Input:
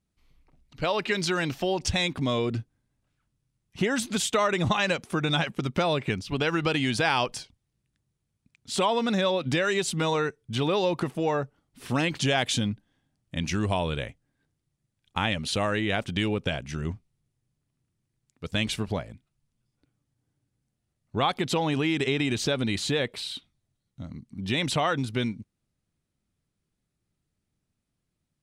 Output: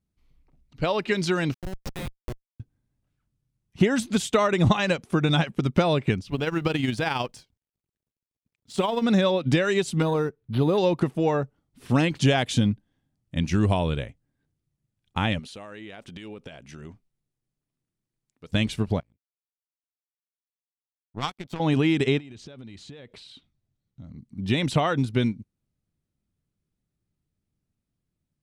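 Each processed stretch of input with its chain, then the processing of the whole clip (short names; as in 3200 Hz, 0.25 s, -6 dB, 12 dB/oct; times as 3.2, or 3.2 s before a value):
1.54–2.6 HPF 880 Hz 6 dB/oct + Schmitt trigger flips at -25 dBFS
6.3–9.03 G.711 law mismatch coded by A + AM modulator 22 Hz, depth 25%
10.02–10.78 dynamic EQ 2200 Hz, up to -8 dB, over -47 dBFS, Q 1.1 + decimation joined by straight lines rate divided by 6×
15.39–18.49 bell 82 Hz -13 dB 2.4 oct + compressor 3:1, threshold -36 dBFS
19–21.6 comb 0.9 ms, depth 53% + power-law curve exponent 2
22.18–24.18 LPF 7500 Hz + compressor 10:1, threshold -37 dBFS
whole clip: low shelf 490 Hz +7 dB; upward expander 1.5:1, over -33 dBFS; gain +2 dB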